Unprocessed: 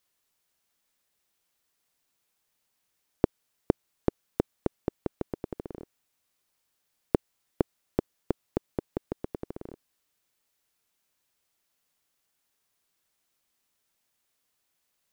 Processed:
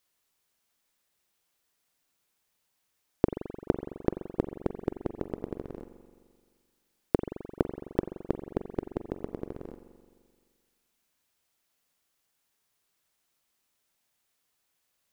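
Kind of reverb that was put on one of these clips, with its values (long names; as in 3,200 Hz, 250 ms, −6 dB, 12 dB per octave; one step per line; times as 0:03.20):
spring reverb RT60 1.8 s, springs 43 ms, chirp 60 ms, DRR 8.5 dB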